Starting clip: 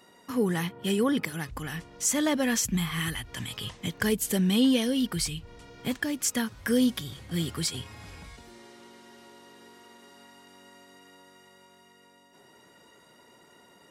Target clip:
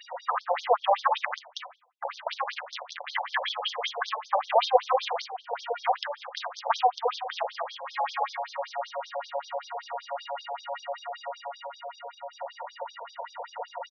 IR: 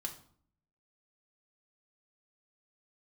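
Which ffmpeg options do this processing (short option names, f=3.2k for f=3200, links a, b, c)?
-filter_complex "[0:a]aeval=exprs='0.237*(cos(1*acos(clip(val(0)/0.237,-1,1)))-cos(1*PI/2))+0.0944*(cos(3*acos(clip(val(0)/0.237,-1,1)))-cos(3*PI/2))':c=same,highpass=370,equalizer=f=2.9k:w=0.47:g=-14.5,asplit=2[a][b];[b]adelay=320.7,volume=-13dB,highshelf=f=4k:g=-7.22[c];[a][c]amix=inputs=2:normalize=0,asplit=3[d][e][f];[d]afade=t=out:st=1.24:d=0.02[g];[e]acrusher=bits=5:dc=4:mix=0:aa=0.000001,afade=t=in:st=1.24:d=0.02,afade=t=out:st=3.08:d=0.02[h];[f]afade=t=in:st=3.08:d=0.02[i];[g][h][i]amix=inputs=3:normalize=0,aemphasis=mode=reproduction:type=bsi,aexciter=amount=8.7:drive=9.8:freq=9.8k,acompressor=threshold=-56dB:ratio=8,asplit=2[j][k];[1:a]atrim=start_sample=2205[l];[k][l]afir=irnorm=-1:irlink=0,volume=4.5dB[m];[j][m]amix=inputs=2:normalize=0,alimiter=level_in=33.5dB:limit=-1dB:release=50:level=0:latency=1,afftfilt=real='re*between(b*sr/1024,660*pow(4700/660,0.5+0.5*sin(2*PI*5.2*pts/sr))/1.41,660*pow(4700/660,0.5+0.5*sin(2*PI*5.2*pts/sr))*1.41)':imag='im*between(b*sr/1024,660*pow(4700/660,0.5+0.5*sin(2*PI*5.2*pts/sr))/1.41,660*pow(4700/660,0.5+0.5*sin(2*PI*5.2*pts/sr))*1.41)':win_size=1024:overlap=0.75,volume=5.5dB"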